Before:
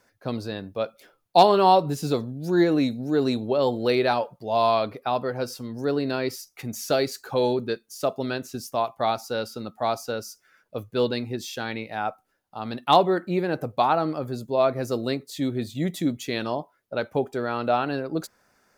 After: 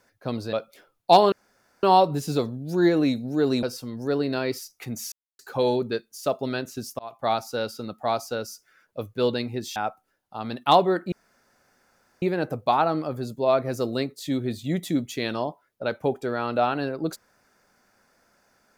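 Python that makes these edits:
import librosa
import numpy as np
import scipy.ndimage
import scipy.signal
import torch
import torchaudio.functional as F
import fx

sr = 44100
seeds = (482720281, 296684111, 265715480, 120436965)

y = fx.edit(x, sr, fx.cut(start_s=0.53, length_s=0.26),
    fx.insert_room_tone(at_s=1.58, length_s=0.51),
    fx.cut(start_s=3.38, length_s=2.02),
    fx.silence(start_s=6.89, length_s=0.27),
    fx.fade_in_span(start_s=8.76, length_s=0.29),
    fx.cut(start_s=11.53, length_s=0.44),
    fx.insert_room_tone(at_s=13.33, length_s=1.1), tone=tone)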